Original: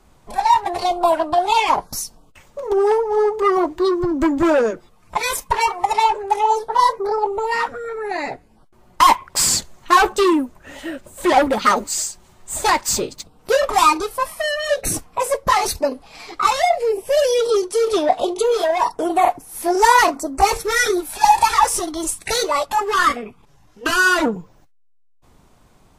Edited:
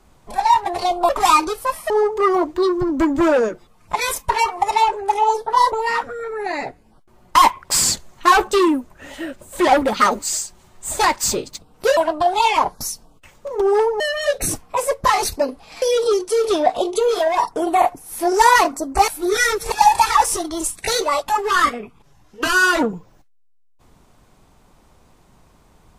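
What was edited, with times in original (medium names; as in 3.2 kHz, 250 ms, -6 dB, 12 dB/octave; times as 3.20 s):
1.09–3.12 s: swap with 13.62–14.43 s
6.94–7.37 s: delete
16.25–17.25 s: delete
20.51–21.15 s: reverse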